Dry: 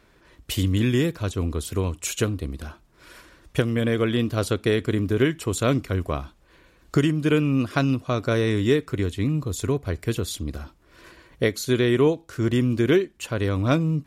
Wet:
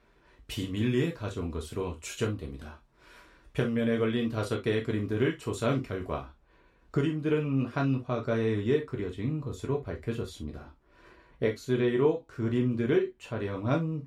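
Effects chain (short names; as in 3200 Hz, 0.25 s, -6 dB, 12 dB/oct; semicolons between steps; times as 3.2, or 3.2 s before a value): LPF 3500 Hz 6 dB/oct, from 6.21 s 1700 Hz; non-linear reverb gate 90 ms falling, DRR 0 dB; gain -8 dB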